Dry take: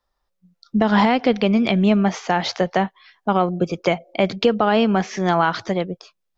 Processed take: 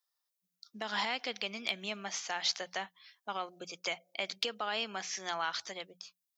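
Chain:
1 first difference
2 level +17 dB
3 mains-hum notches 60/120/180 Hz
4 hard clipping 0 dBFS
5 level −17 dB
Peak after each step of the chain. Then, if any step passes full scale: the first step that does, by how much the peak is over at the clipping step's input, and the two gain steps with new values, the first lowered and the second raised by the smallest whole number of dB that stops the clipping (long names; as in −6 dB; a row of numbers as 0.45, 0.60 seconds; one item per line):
−13.5, +3.5, +3.5, 0.0, −17.0 dBFS
step 2, 3.5 dB
step 2 +13 dB, step 5 −13 dB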